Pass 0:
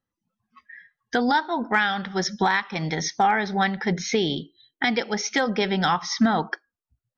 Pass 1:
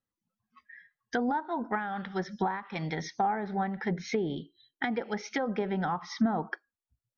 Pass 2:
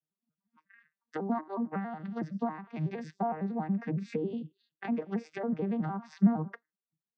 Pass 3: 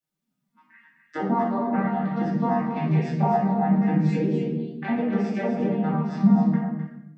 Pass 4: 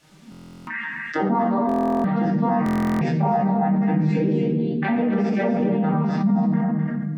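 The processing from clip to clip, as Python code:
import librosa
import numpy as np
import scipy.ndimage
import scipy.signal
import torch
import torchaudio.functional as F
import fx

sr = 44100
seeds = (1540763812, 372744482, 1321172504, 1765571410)

y1 = fx.env_lowpass_down(x, sr, base_hz=970.0, full_db=-18.0)
y1 = F.gain(torch.from_numpy(y1), -6.5).numpy()
y2 = fx.vocoder_arp(y1, sr, chord='major triad', root=51, every_ms=92)
y3 = fx.rider(y2, sr, range_db=4, speed_s=2.0)
y3 = y3 + 10.0 ** (-8.0 / 20.0) * np.pad(y3, (int(257 * sr / 1000.0), 0))[:len(y3)]
y3 = fx.room_shoebox(y3, sr, seeds[0], volume_m3=220.0, walls='mixed', distance_m=2.5)
y4 = fx.air_absorb(y3, sr, metres=66.0)
y4 = fx.buffer_glitch(y4, sr, at_s=(0.3, 1.67, 2.64), block=1024, repeats=15)
y4 = fx.env_flatten(y4, sr, amount_pct=70)
y4 = F.gain(torch.from_numpy(y4), -4.0).numpy()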